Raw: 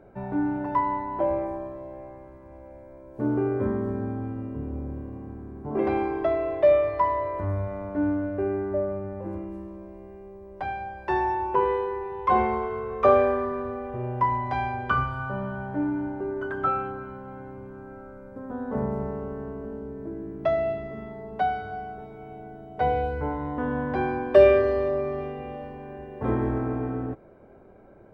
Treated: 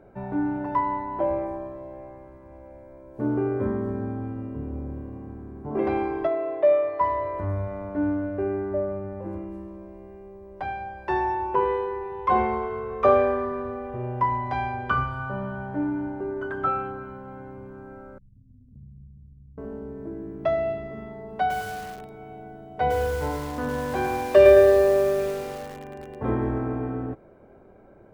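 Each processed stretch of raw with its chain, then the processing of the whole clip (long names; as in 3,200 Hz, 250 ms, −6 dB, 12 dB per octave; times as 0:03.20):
0:06.27–0:07.01: high-pass filter 250 Hz + high-shelf EQ 2,700 Hz −10.5 dB
0:18.18–0:19.58: inverse Chebyshev low-pass filter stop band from 780 Hz, stop band 80 dB + downward compressor 2 to 1, threshold −49 dBFS
0:21.29–0:26.15: high-shelf EQ 2,200 Hz +3.5 dB + mains-hum notches 60/120/180/240/300/360/420/480 Hz + feedback echo at a low word length 107 ms, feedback 55%, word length 6 bits, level −6 dB
whole clip: no processing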